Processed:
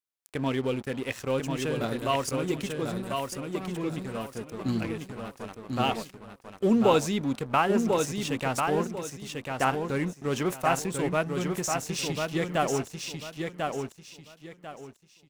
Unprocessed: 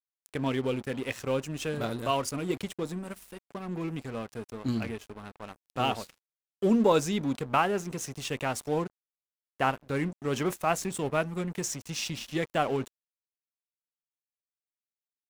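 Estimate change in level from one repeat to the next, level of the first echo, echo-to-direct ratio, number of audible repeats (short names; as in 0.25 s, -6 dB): -11.5 dB, -4.5 dB, -4.0 dB, 3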